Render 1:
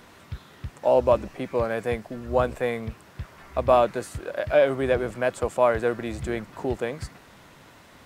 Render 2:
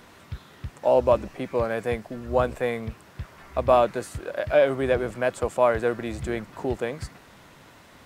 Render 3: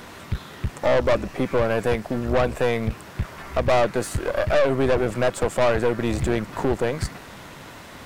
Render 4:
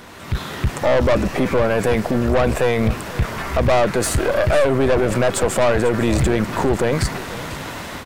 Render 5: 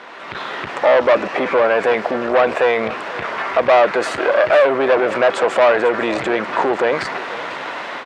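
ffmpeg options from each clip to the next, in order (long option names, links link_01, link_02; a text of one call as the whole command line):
ffmpeg -i in.wav -af anull out.wav
ffmpeg -i in.wav -filter_complex "[0:a]asplit=2[link_01][link_02];[link_02]acompressor=threshold=-29dB:ratio=6,volume=2dB[link_03];[link_01][link_03]amix=inputs=2:normalize=0,aeval=exprs='(tanh(11.2*val(0)+0.6)-tanh(0.6))/11.2':channel_layout=same,volume=5.5dB" out.wav
ffmpeg -i in.wav -af "alimiter=limit=-20dB:level=0:latency=1:release=13,dynaudnorm=framelen=190:gausssize=3:maxgain=11dB,aecho=1:1:494:0.141" out.wav
ffmpeg -i in.wav -af "highpass=500,lowpass=2900,volume=6dB" out.wav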